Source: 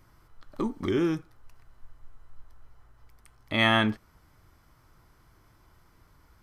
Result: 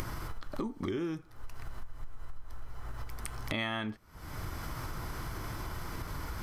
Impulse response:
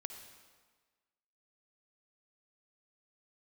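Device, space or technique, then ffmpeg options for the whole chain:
upward and downward compression: -af "acompressor=mode=upward:threshold=-32dB:ratio=2.5,acompressor=threshold=-42dB:ratio=6,volume=8.5dB"

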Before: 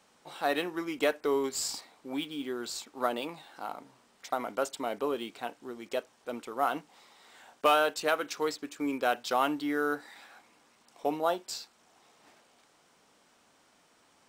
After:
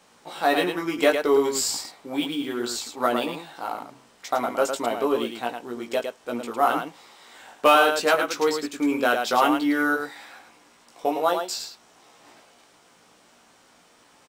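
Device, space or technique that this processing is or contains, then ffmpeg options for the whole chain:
slapback doubling: -filter_complex "[0:a]asplit=3[a][b][c];[b]adelay=17,volume=-4dB[d];[c]adelay=108,volume=-5.5dB[e];[a][d][e]amix=inputs=3:normalize=0,asettb=1/sr,asplit=3[f][g][h];[f]atrim=end=11.064[i];[g]atrim=start=11.06:end=11.57,asetpts=PTS-STARTPTS,afade=t=in:d=0.004:c=qsin,afade=t=out:st=0.506:d=0.004:c=qsin,lowshelf=f=220:g=-11.5[j];[h]atrim=start=11.566[k];[i][j]acrossfade=d=0.004:c1=hsin:c2=qsin[l];[l][k]acrossfade=d=0.004:c1=qsin:c2=hsin,volume=6dB"

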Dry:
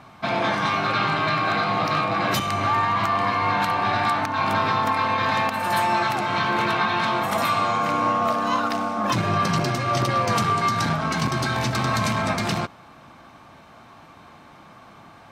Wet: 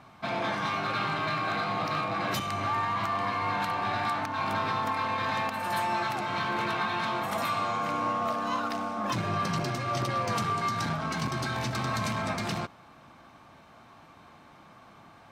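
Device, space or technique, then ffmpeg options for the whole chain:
parallel distortion: -filter_complex "[0:a]asplit=2[a][b];[b]asoftclip=type=hard:threshold=-29.5dB,volume=-10dB[c];[a][c]amix=inputs=2:normalize=0,volume=-8.5dB"

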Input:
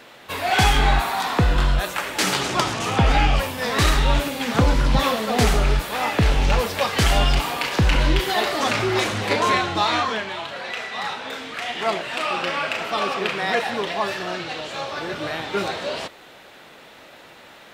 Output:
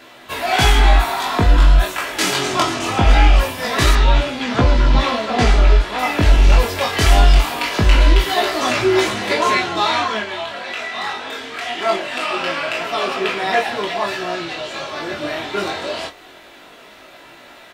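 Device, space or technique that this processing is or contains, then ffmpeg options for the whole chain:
double-tracked vocal: -filter_complex "[0:a]asplit=2[a][b];[b]adelay=24,volume=-8dB[c];[a][c]amix=inputs=2:normalize=0,flanger=delay=15.5:depth=6.1:speed=0.22,asettb=1/sr,asplit=3[d][e][f];[d]atrim=end=3.954[g];[e]atrim=start=3.95:end=5.99,asetpts=PTS-STARTPTS,afade=t=in:d=0.004:c=qsin,afade=t=out:st=2.036:d=0.004:c=qsin,lowpass=5.3k[h];[f]atrim=start=5.986[i];[g][h]acrossfade=d=0.004:c1=hsin:c2=qsin[j];[j][i]acrossfade=d=0.004:c1=qsin:c2=hsin,aecho=1:1:3:0.34,volume=5dB"

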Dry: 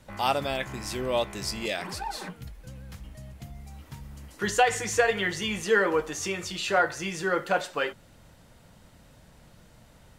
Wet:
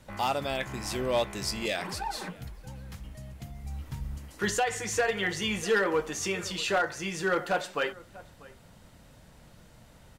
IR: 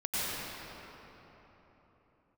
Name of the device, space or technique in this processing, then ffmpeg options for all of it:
limiter into clipper: -filter_complex "[0:a]asettb=1/sr,asplit=3[a][b][c];[a]atrim=end=3.644[d];[b]atrim=start=3.64:end=4.18,asetpts=PTS-STARTPTS,afade=t=in:d=0.004:c=qsin,afade=t=out:st=0.536:d=0.004:c=qsin,lowshelf=f=110:g=11[e];[c]atrim=start=4.176[f];[d][e]acrossfade=d=0.004:c1=hsin:c2=qsin[g];[g][f]acrossfade=d=0.004:c1=qsin:c2=hsin,asplit=2[h][i];[i]adelay=641.4,volume=-22dB,highshelf=f=4k:g=-14.4[j];[h][j]amix=inputs=2:normalize=0,alimiter=limit=-14dB:level=0:latency=1:release=475,asoftclip=type=hard:threshold=-19.5dB"

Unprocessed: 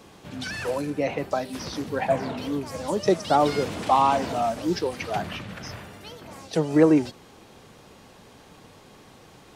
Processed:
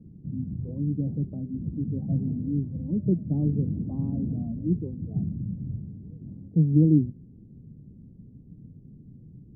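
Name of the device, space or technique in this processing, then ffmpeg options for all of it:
the neighbour's flat through the wall: -af "lowpass=f=240:w=0.5412,lowpass=f=240:w=1.3066,equalizer=f=140:t=o:w=0.59:g=5,volume=6dB"

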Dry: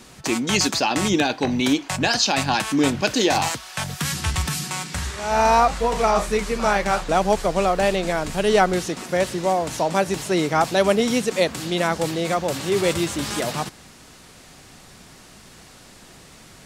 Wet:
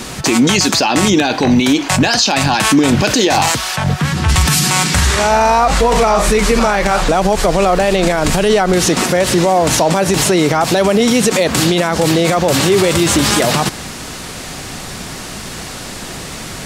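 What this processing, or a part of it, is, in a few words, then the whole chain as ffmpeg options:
loud club master: -filter_complex "[0:a]acompressor=threshold=-21dB:ratio=2.5,asoftclip=type=hard:threshold=-12.5dB,alimiter=level_in=21.5dB:limit=-1dB:release=50:level=0:latency=1,asplit=3[a][b][c];[a]afade=t=out:st=3.75:d=0.02[d];[b]lowpass=f=1.3k:p=1,afade=t=in:st=3.75:d=0.02,afade=t=out:st=4.28:d=0.02[e];[c]afade=t=in:st=4.28:d=0.02[f];[d][e][f]amix=inputs=3:normalize=0,volume=-2.5dB"

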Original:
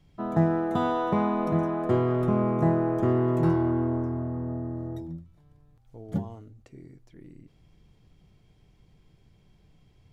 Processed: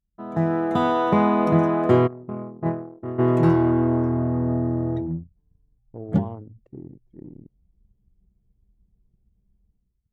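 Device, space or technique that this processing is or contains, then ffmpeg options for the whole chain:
voice memo with heavy noise removal: -filter_complex "[0:a]asplit=3[a][b][c];[a]afade=t=out:st=2.06:d=0.02[d];[b]agate=range=-33dB:threshold=-12dB:ratio=3:detection=peak,afade=t=in:st=2.06:d=0.02,afade=t=out:st=3.18:d=0.02[e];[c]afade=t=in:st=3.18:d=0.02[f];[d][e][f]amix=inputs=3:normalize=0,anlmdn=0.158,dynaudnorm=f=130:g=7:m=15dB,highpass=f=78:p=1,adynamicequalizer=threshold=0.00891:dfrequency=2400:dqfactor=1.5:tfrequency=2400:tqfactor=1.5:attack=5:release=100:ratio=0.375:range=1.5:mode=boostabove:tftype=bell,volume=-4.5dB"

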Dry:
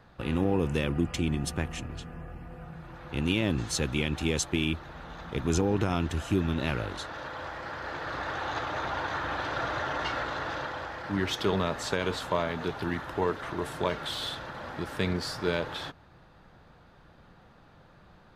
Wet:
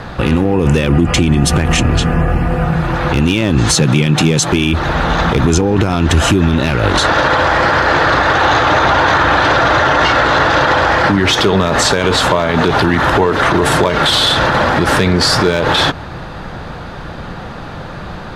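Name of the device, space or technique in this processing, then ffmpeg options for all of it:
loud club master: -filter_complex "[0:a]lowpass=11k,asettb=1/sr,asplit=3[a][b][c];[a]atrim=end=3.754[d];[b]atrim=start=3.75:end=4.49,asetpts=PTS-STARTPTS,afade=t=in:d=0.004:c=qsin,afade=t=out:st=0.736:d=0.004:c=qsin,lowshelf=f=100:t=q:w=3:g=-13[e];[c]atrim=start=4.486[f];[d][e]acrossfade=d=0.004:c1=hsin:c2=qsin[g];[g][f]acrossfade=d=0.004:c1=qsin:c2=hsin,acompressor=threshold=-29dB:ratio=3,asoftclip=type=hard:threshold=-22dB,alimiter=level_in=31dB:limit=-1dB:release=50:level=0:latency=1,volume=-2dB"

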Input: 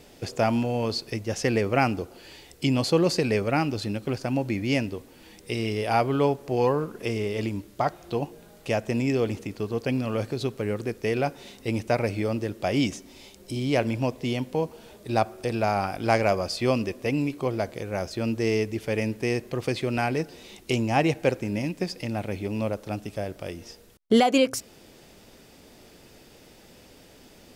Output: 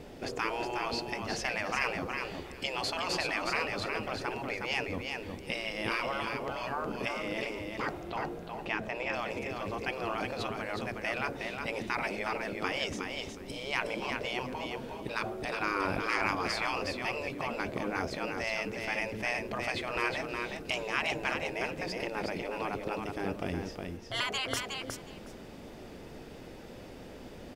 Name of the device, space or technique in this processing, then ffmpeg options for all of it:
through cloth: -filter_complex "[0:a]asettb=1/sr,asplit=3[a][b][c];[a]atrim=end=8.034[d];[b]atrim=start=8.03:end=9.13,asetpts=PTS-STARTPTS,afade=t=in:d=0.004:c=qsin,afade=t=out:st=1.096:d=0.004:c=qsin,acrossover=split=4300[e][f];[f]acompressor=threshold=-59dB:ratio=4:attack=1:release=60[g];[e][g]amix=inputs=2:normalize=0[h];[c]atrim=start=9.126[i];[d][h]acrossfade=d=0.004:c1=hsin:c2=qsin[j];[j][i]acrossfade=d=0.004:c1=qsin:c2=hsin,highshelf=f=3.2k:g=-14,afftfilt=real='re*lt(hypot(re,im),0.1)':imag='im*lt(hypot(re,im),0.1)':win_size=1024:overlap=0.75,aecho=1:1:364|728|1092:0.562|0.09|0.0144,volume=5dB"

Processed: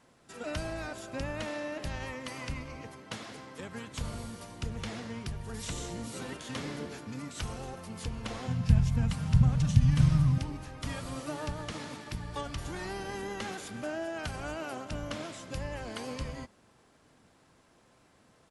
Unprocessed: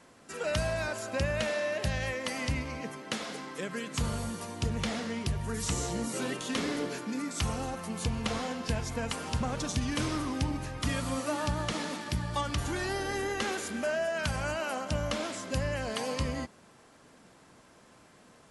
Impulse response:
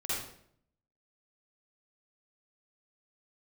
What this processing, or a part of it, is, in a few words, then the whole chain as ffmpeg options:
octave pedal: -filter_complex "[0:a]asplit=2[a][b];[b]asetrate=22050,aresample=44100,atempo=2,volume=-4dB[c];[a][c]amix=inputs=2:normalize=0,asettb=1/sr,asplit=3[d][e][f];[d]atrim=end=8.474[g];[e]atrim=start=8.47:end=10.38,asetpts=PTS-STARTPTS,afade=t=in:d=0.004:c=qsin,afade=t=out:st=1.906:d=0.004:c=qsin,lowshelf=f=230:t=q:w=3:g=13[h];[f]atrim=start=10.376[i];[g][h]acrossfade=d=0.004:c1=hsin:c2=qsin[j];[j][i]acrossfade=d=0.004:c1=qsin:c2=hsin,volume=-7dB"

